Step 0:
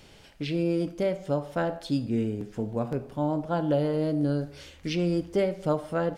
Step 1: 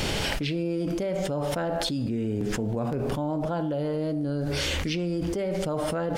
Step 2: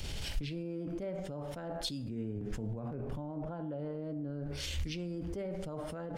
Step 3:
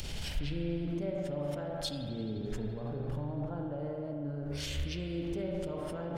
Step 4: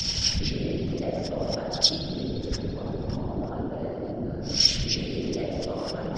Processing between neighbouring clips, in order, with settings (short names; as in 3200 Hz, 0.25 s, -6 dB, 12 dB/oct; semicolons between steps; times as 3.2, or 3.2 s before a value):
fast leveller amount 100%; gain -6.5 dB
low shelf 130 Hz +10 dB; limiter -23.5 dBFS, peak gain reduction 11 dB; three-band expander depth 100%; gain -7.5 dB
upward compressor, threshold -43 dBFS; spring tank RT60 3 s, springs 41 ms, chirp 45 ms, DRR 3 dB
synth low-pass 5400 Hz, resonance Q 16; whisperiser; pre-echo 0.109 s -16.5 dB; gain +6 dB